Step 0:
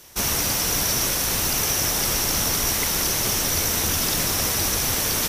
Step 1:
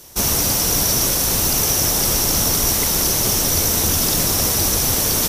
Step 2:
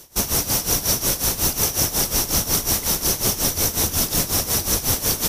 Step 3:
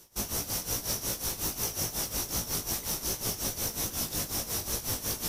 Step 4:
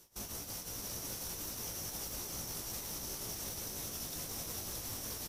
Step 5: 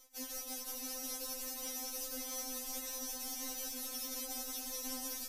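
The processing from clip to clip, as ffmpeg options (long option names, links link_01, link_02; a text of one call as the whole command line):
ffmpeg -i in.wav -af "equalizer=frequency=2000:width_type=o:width=1.9:gain=-7,volume=6dB" out.wav
ffmpeg -i in.wav -af "tremolo=f=5.5:d=0.8" out.wav
ffmpeg -i in.wav -af "areverse,acompressor=mode=upward:threshold=-23dB:ratio=2.5,areverse,flanger=delay=17:depth=2.8:speed=2.5,volume=-8.5dB" out.wav
ffmpeg -i in.wav -af "alimiter=level_in=3dB:limit=-24dB:level=0:latency=1:release=31,volume=-3dB,aecho=1:1:623:0.668,volume=-6dB" out.wav
ffmpeg -i in.wav -af "afftfilt=real='re*3.46*eq(mod(b,12),0)':imag='im*3.46*eq(mod(b,12),0)':win_size=2048:overlap=0.75,volume=2.5dB" out.wav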